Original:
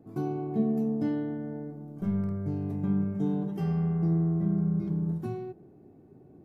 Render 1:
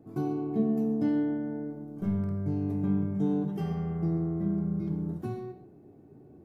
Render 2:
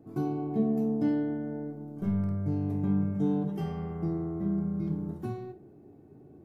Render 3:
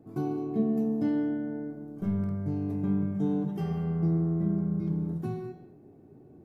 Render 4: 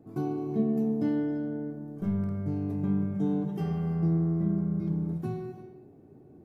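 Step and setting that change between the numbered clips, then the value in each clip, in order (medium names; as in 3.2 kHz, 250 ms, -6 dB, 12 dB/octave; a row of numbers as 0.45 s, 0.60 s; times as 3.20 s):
gated-style reverb, gate: 160 ms, 80 ms, 250 ms, 370 ms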